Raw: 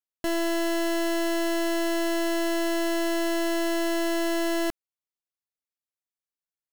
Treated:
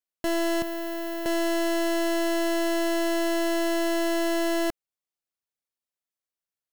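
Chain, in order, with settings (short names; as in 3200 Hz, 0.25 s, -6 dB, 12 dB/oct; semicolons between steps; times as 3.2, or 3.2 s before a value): 0.62–1.26 sine folder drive 13 dB, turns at -25 dBFS; bell 580 Hz +2.5 dB 0.81 oct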